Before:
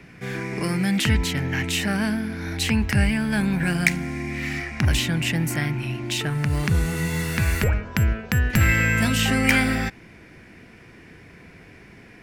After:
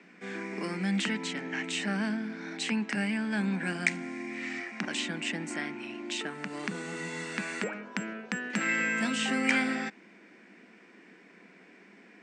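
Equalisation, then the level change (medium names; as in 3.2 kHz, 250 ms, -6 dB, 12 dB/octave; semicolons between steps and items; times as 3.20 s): Chebyshev band-pass 190–8400 Hz, order 5; peaking EQ 5.3 kHz -3.5 dB 0.65 oct; -6.5 dB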